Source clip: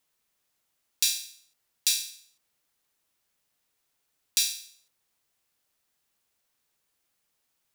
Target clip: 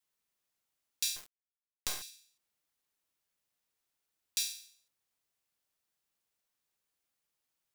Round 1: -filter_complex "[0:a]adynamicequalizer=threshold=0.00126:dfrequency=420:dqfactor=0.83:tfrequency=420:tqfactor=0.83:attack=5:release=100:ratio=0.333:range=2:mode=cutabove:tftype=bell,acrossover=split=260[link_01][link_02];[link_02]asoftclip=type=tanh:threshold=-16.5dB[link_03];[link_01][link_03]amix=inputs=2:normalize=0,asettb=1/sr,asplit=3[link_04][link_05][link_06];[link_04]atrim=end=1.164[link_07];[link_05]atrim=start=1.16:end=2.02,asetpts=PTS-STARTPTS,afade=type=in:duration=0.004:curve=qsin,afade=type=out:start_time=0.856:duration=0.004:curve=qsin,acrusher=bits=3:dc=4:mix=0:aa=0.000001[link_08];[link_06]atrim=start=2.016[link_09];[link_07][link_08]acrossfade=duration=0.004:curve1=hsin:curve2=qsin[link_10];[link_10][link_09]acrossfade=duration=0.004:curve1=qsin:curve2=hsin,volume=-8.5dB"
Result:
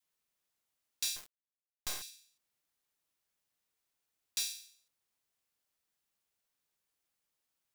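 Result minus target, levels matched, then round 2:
soft clipping: distortion +13 dB
-filter_complex "[0:a]adynamicequalizer=threshold=0.00126:dfrequency=420:dqfactor=0.83:tfrequency=420:tqfactor=0.83:attack=5:release=100:ratio=0.333:range=2:mode=cutabove:tftype=bell,acrossover=split=260[link_01][link_02];[link_02]asoftclip=type=tanh:threshold=-4.5dB[link_03];[link_01][link_03]amix=inputs=2:normalize=0,asettb=1/sr,asplit=3[link_04][link_05][link_06];[link_04]atrim=end=1.164[link_07];[link_05]atrim=start=1.16:end=2.02,asetpts=PTS-STARTPTS,afade=type=in:duration=0.004:curve=qsin,afade=type=out:start_time=0.856:duration=0.004:curve=qsin,acrusher=bits=3:dc=4:mix=0:aa=0.000001[link_08];[link_06]atrim=start=2.016[link_09];[link_07][link_08]acrossfade=duration=0.004:curve1=hsin:curve2=qsin[link_10];[link_10][link_09]acrossfade=duration=0.004:curve1=qsin:curve2=hsin,volume=-8.5dB"

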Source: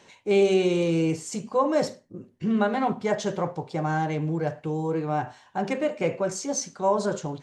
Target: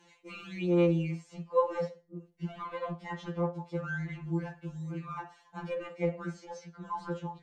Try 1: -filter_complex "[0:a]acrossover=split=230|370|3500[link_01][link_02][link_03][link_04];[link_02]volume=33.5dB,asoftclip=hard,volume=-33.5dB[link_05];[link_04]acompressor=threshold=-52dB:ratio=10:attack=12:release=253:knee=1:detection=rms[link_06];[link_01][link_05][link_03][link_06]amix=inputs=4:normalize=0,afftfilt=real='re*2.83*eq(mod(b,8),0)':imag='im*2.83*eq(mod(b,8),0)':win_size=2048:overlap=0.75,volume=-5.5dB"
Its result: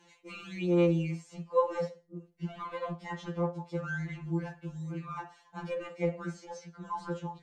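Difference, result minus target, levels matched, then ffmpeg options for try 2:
downward compressor: peak gain reduction −5.5 dB
-filter_complex "[0:a]acrossover=split=230|370|3500[link_01][link_02][link_03][link_04];[link_02]volume=33.5dB,asoftclip=hard,volume=-33.5dB[link_05];[link_04]acompressor=threshold=-58dB:ratio=10:attack=12:release=253:knee=1:detection=rms[link_06];[link_01][link_05][link_03][link_06]amix=inputs=4:normalize=0,afftfilt=real='re*2.83*eq(mod(b,8),0)':imag='im*2.83*eq(mod(b,8),0)':win_size=2048:overlap=0.75,volume=-5.5dB"

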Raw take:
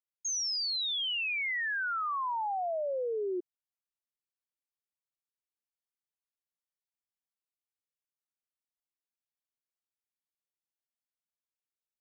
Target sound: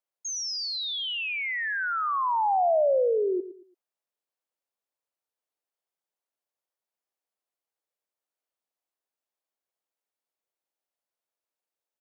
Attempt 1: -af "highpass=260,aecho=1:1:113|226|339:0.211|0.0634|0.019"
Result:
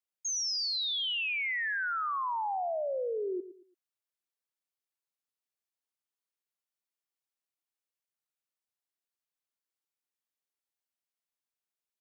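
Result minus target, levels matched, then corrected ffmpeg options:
500 Hz band −5.0 dB
-af "highpass=260,equalizer=frequency=600:width_type=o:width=1.9:gain=11,aecho=1:1:113|226|339:0.211|0.0634|0.019"

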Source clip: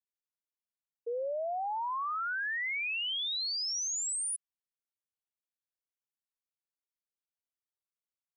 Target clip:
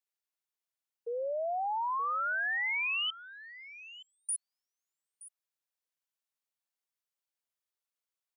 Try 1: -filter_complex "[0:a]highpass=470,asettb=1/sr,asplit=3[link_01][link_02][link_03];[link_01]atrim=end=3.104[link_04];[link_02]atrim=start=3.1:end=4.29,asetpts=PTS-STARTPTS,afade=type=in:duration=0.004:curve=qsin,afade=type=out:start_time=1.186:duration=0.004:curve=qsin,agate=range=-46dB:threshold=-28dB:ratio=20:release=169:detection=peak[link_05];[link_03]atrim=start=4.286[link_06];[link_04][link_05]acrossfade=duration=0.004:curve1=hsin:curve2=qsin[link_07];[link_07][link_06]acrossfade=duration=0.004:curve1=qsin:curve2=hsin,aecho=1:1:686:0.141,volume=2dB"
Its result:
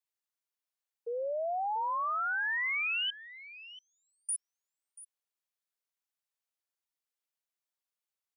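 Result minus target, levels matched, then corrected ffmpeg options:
echo 237 ms early
-filter_complex "[0:a]highpass=470,asettb=1/sr,asplit=3[link_01][link_02][link_03];[link_01]atrim=end=3.104[link_04];[link_02]atrim=start=3.1:end=4.29,asetpts=PTS-STARTPTS,afade=type=in:duration=0.004:curve=qsin,afade=type=out:start_time=1.186:duration=0.004:curve=qsin,agate=range=-46dB:threshold=-28dB:ratio=20:release=169:detection=peak[link_05];[link_03]atrim=start=4.286[link_06];[link_04][link_05]acrossfade=duration=0.004:curve1=hsin:curve2=qsin[link_07];[link_07][link_06]acrossfade=duration=0.004:curve1=qsin:curve2=hsin,aecho=1:1:923:0.141,volume=2dB"

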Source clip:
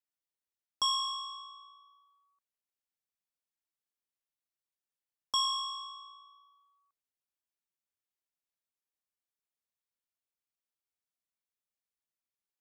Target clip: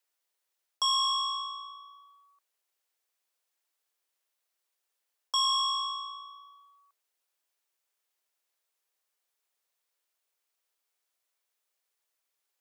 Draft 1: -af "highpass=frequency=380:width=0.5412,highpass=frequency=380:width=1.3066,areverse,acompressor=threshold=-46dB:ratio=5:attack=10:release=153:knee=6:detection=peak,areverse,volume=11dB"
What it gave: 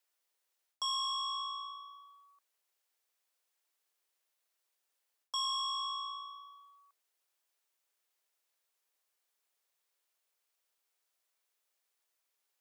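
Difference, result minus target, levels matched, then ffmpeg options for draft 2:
downward compressor: peak gain reduction +8 dB
-af "highpass=frequency=380:width=0.5412,highpass=frequency=380:width=1.3066,areverse,acompressor=threshold=-36dB:ratio=5:attack=10:release=153:knee=6:detection=peak,areverse,volume=11dB"

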